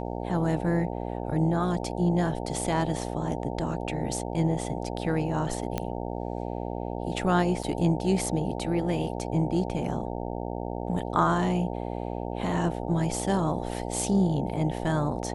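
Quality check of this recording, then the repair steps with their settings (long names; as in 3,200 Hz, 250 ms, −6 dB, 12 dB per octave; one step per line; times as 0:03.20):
mains buzz 60 Hz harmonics 15 −33 dBFS
0:05.78: click −14 dBFS
0:07.63: drop-out 4.9 ms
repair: click removal
hum removal 60 Hz, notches 15
repair the gap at 0:07.63, 4.9 ms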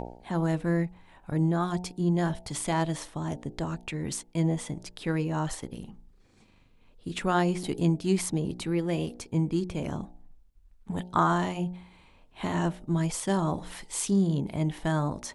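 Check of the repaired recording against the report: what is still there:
none of them is left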